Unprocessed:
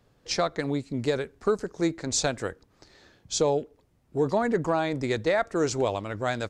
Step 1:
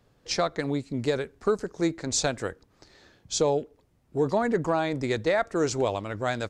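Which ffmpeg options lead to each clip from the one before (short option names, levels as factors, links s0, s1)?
-af anull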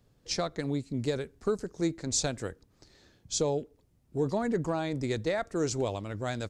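-af "equalizer=f=1200:w=0.33:g=-8"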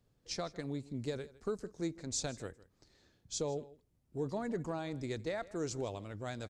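-af "aecho=1:1:157:0.106,volume=0.398"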